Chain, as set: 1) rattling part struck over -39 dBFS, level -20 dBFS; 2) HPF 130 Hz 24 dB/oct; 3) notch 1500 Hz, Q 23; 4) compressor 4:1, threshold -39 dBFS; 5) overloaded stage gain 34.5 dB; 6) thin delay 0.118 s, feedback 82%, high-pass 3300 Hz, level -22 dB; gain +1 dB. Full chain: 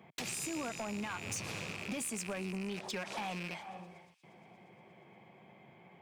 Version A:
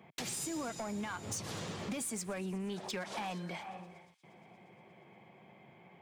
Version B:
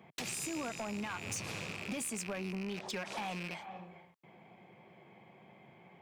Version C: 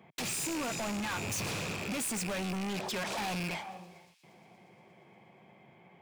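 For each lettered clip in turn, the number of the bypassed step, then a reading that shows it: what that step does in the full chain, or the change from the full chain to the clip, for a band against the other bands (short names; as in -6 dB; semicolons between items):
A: 1, 2 kHz band -4.0 dB; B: 6, echo-to-direct -27.5 dB to none; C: 4, mean gain reduction 8.0 dB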